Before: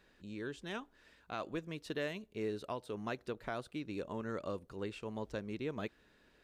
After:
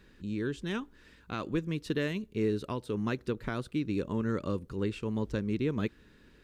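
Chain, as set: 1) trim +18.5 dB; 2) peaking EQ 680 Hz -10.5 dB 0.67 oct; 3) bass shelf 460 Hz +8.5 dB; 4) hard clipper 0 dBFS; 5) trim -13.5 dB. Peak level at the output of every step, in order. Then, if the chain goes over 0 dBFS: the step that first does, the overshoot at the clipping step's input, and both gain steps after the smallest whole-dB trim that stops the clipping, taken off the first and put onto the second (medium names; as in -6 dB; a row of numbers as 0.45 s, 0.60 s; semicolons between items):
-8.5 dBFS, -9.5 dBFS, -4.5 dBFS, -4.5 dBFS, -18.0 dBFS; nothing clips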